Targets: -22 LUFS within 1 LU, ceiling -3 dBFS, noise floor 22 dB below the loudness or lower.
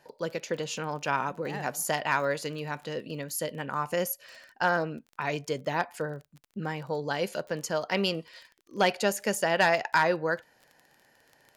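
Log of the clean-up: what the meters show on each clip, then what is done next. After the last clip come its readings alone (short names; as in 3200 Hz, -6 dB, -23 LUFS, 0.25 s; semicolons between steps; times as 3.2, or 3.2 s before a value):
ticks 24/s; loudness -30.0 LUFS; peak -13.0 dBFS; loudness target -22.0 LUFS
-> de-click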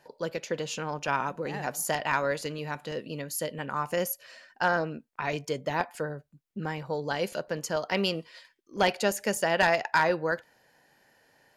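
ticks 0.26/s; loudness -30.0 LUFS; peak -11.5 dBFS; loudness target -22.0 LUFS
-> gain +8 dB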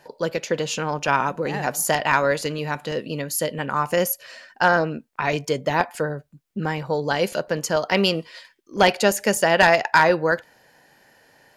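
loudness -22.0 LUFS; peak -3.5 dBFS; noise floor -63 dBFS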